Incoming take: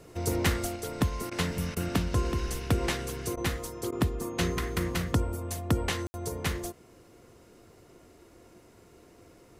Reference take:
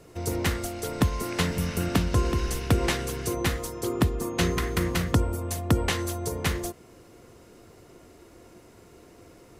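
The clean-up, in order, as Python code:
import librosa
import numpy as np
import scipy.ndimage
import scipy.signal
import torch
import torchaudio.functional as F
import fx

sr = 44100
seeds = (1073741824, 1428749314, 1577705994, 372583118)

y = fx.fix_ambience(x, sr, seeds[0], print_start_s=8.61, print_end_s=9.11, start_s=6.07, end_s=6.14)
y = fx.fix_interpolate(y, sr, at_s=(1.3, 1.75, 3.36, 3.91), length_ms=12.0)
y = fx.gain(y, sr, db=fx.steps((0.0, 0.0), (0.76, 4.0)))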